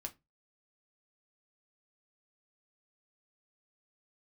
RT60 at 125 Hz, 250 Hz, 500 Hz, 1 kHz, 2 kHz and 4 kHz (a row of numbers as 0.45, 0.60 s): 0.35, 0.25, 0.20, 0.20, 0.20, 0.15 s